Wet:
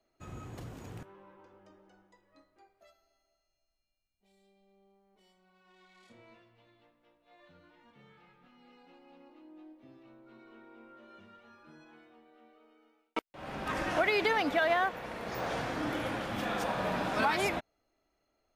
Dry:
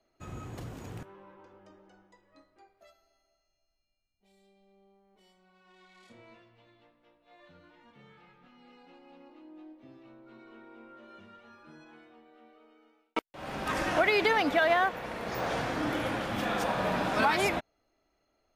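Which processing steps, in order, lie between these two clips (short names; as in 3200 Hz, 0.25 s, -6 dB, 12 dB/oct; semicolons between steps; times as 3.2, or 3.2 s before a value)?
13.22–13.9 tone controls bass +1 dB, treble -4 dB; gain -3 dB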